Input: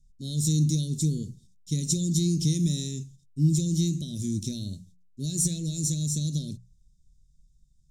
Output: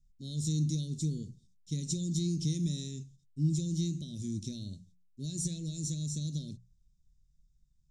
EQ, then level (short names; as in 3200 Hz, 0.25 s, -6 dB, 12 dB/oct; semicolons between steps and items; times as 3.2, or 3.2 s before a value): LPF 7200 Hz 12 dB/oct; -7.0 dB